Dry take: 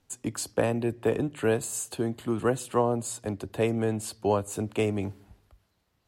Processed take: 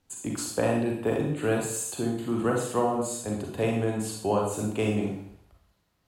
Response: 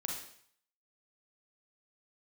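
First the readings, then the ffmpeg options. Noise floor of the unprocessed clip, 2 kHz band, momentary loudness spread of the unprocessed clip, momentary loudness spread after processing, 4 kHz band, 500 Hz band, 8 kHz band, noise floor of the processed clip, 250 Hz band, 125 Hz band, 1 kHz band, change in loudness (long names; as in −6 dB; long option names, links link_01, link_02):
−73 dBFS, +1.0 dB, 7 LU, 6 LU, +1.0 dB, 0.0 dB, +1.0 dB, −72 dBFS, +1.5 dB, +0.5 dB, +1.5 dB, +0.5 dB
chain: -filter_complex "[1:a]atrim=start_sample=2205[link_01];[0:a][link_01]afir=irnorm=-1:irlink=0"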